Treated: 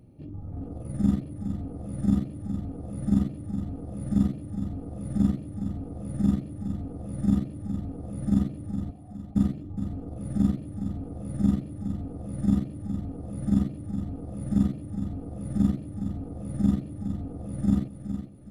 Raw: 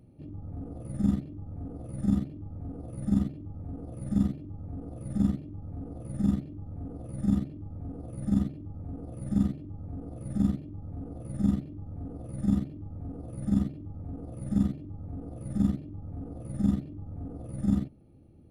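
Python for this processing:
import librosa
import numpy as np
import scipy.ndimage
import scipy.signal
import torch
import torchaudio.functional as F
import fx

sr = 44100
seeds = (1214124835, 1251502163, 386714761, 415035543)

y = fx.formant_cascade(x, sr, vowel='a', at=(8.9, 9.35), fade=0.02)
y = fx.echo_feedback(y, sr, ms=415, feedback_pct=42, wet_db=-9.5)
y = F.gain(torch.from_numpy(y), 2.5).numpy()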